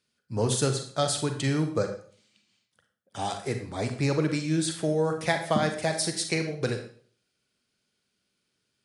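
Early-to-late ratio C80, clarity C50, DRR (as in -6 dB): 11.5 dB, 8.0 dB, 5.5 dB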